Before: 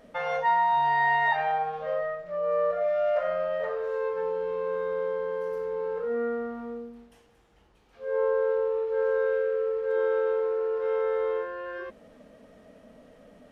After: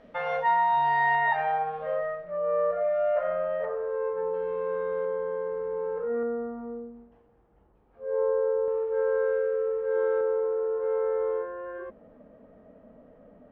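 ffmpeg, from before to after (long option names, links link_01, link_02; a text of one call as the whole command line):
ffmpeg -i in.wav -af "asetnsamples=nb_out_samples=441:pad=0,asendcmd='1.15 lowpass f 2600;2.25 lowpass f 1900;3.65 lowpass f 1300;4.34 lowpass f 2200;5.05 lowpass f 1600;6.23 lowpass f 1000;8.68 lowpass f 1700;10.21 lowpass f 1200',lowpass=3600" out.wav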